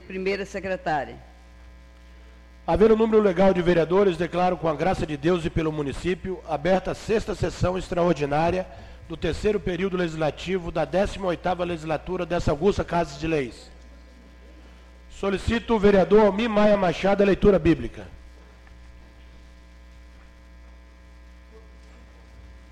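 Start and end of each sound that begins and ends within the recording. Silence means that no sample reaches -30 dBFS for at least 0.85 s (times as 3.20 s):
2.68–13.49 s
15.20–18.02 s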